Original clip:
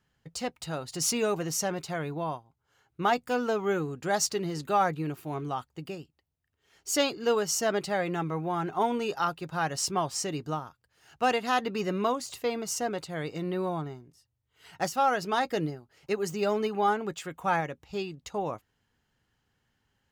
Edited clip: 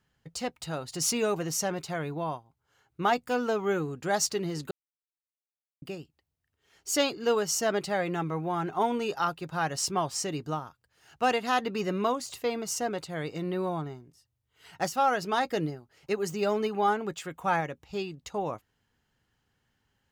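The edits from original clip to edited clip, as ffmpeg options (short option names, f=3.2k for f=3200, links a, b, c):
-filter_complex "[0:a]asplit=3[a][b][c];[a]atrim=end=4.71,asetpts=PTS-STARTPTS,afade=t=out:st=4.706:d=0.004:c=hsin[d];[b]atrim=start=4.71:end=5.82,asetpts=PTS-STARTPTS,volume=0[e];[c]atrim=start=5.82,asetpts=PTS-STARTPTS,afade=t=in:d=0.004:c=hsin[f];[d][e][f]concat=n=3:v=0:a=1"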